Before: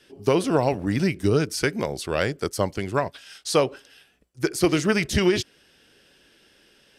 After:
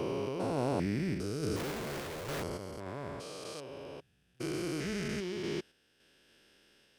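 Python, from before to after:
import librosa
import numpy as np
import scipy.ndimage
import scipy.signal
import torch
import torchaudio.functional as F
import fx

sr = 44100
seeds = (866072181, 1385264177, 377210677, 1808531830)

y = fx.spec_steps(x, sr, hold_ms=400)
y = fx.schmitt(y, sr, flips_db=-42.0, at=(1.56, 2.43))
y = fx.tremolo_random(y, sr, seeds[0], hz=3.5, depth_pct=55)
y = y * 10.0 ** (-5.0 / 20.0)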